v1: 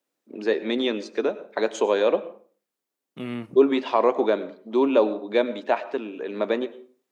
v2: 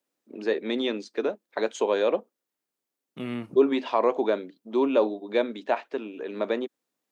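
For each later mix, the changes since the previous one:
reverb: off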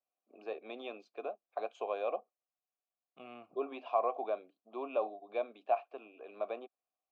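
master: add vowel filter a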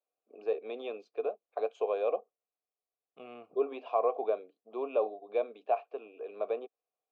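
master: add peaking EQ 450 Hz +12 dB 0.39 oct

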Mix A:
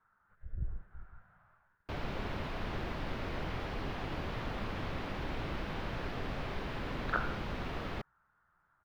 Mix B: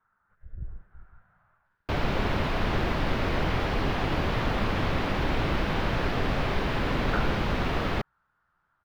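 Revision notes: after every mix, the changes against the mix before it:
background +11.5 dB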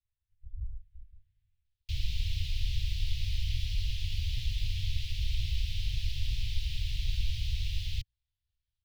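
master: add inverse Chebyshev band-stop 220–1400 Hz, stop band 50 dB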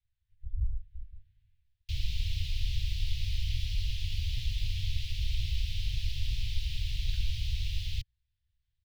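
speech +7.0 dB

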